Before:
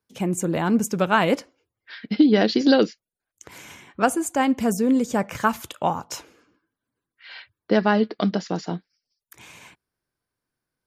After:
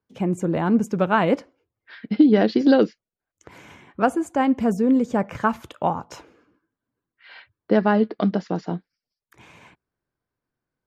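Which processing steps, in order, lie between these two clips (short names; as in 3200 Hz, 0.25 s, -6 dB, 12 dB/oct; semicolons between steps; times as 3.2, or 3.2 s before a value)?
LPF 1400 Hz 6 dB/oct; gain +1.5 dB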